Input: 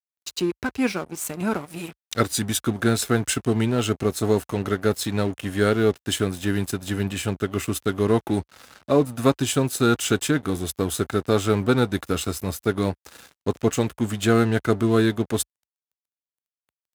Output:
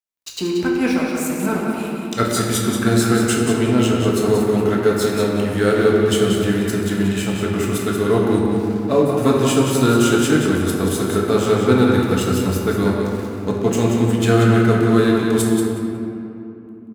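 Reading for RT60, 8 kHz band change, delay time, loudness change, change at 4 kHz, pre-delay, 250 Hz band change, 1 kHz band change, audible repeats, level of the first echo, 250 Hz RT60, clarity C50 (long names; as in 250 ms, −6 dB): 2.9 s, +3.0 dB, 183 ms, +6.0 dB, +3.5 dB, 4 ms, +7.0 dB, +5.5 dB, 1, −6.0 dB, 4.7 s, −1.0 dB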